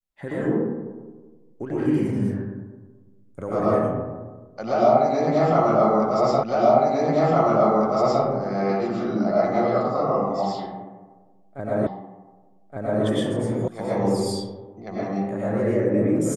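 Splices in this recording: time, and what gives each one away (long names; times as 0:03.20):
0:06.43: the same again, the last 1.81 s
0:11.87: the same again, the last 1.17 s
0:13.68: cut off before it has died away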